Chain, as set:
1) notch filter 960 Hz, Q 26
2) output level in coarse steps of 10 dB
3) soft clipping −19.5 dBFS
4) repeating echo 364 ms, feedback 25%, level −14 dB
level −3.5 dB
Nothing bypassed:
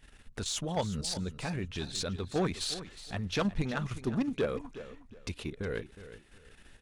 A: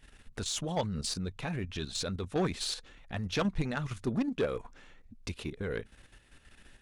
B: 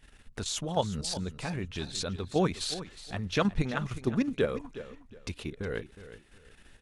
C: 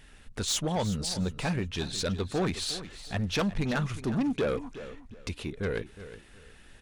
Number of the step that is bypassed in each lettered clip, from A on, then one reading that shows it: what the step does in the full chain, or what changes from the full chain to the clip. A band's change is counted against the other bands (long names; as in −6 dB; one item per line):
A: 4, change in momentary loudness spread −6 LU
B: 3, distortion level −13 dB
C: 2, change in crest factor −3.0 dB